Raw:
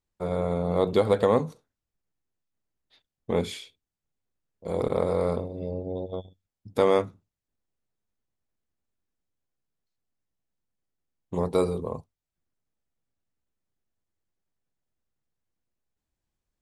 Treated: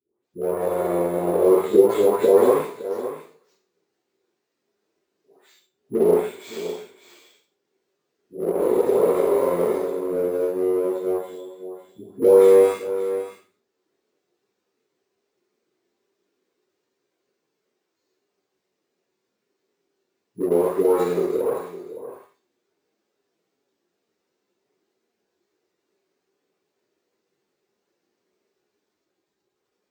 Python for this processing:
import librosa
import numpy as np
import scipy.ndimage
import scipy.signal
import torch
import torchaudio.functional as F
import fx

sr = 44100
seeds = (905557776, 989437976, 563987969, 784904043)

p1 = np.where(x < 0.0, 10.0 ** (-12.0 / 20.0) * x, x)
p2 = fx.dispersion(p1, sr, late='highs', ms=131.0, hz=1100.0)
p3 = np.repeat(p2[::4], 4)[:len(p2)]
p4 = fx.stretch_vocoder_free(p3, sr, factor=1.8)
p5 = scipy.signal.sosfilt(scipy.signal.butter(2, 240.0, 'highpass', fs=sr, output='sos'), p4)
p6 = fx.peak_eq(p5, sr, hz=390.0, db=15.0, octaves=0.64)
p7 = p6 + 10.0 ** (-16.0 / 20.0) * np.pad(p6, (int(562 * sr / 1000.0), 0))[:len(p6)]
p8 = fx.rev_schroeder(p7, sr, rt60_s=0.31, comb_ms=31, drr_db=5.5)
p9 = np.sign(p8) * np.maximum(np.abs(p8) - 10.0 ** (-31.5 / 20.0), 0.0)
p10 = p8 + (p9 * 10.0 ** (-8.0 / 20.0))
p11 = fx.peak_eq(p10, sr, hz=3200.0, db=-3.0, octaves=0.32)
p12 = fx.band_squash(p11, sr, depth_pct=40)
y = p12 * 10.0 ** (2.0 / 20.0)